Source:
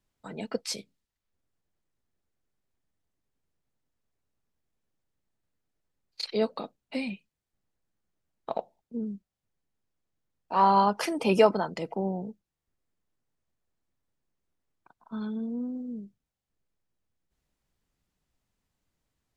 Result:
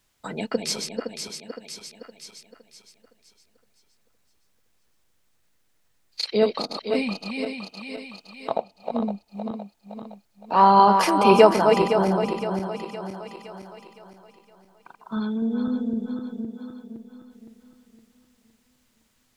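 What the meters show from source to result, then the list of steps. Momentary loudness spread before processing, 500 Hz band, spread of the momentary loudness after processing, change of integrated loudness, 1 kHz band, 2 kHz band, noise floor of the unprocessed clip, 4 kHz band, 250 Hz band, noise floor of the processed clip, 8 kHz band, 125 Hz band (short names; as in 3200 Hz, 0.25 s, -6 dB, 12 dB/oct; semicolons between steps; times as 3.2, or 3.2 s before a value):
19 LU, +8.0 dB, 25 LU, +6.0 dB, +8.0 dB, +8.0 dB, under -85 dBFS, +8.5 dB, +7.5 dB, -66 dBFS, +8.5 dB, +7.0 dB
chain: regenerating reverse delay 0.257 s, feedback 64%, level -5 dB; mismatched tape noise reduction encoder only; gain +6 dB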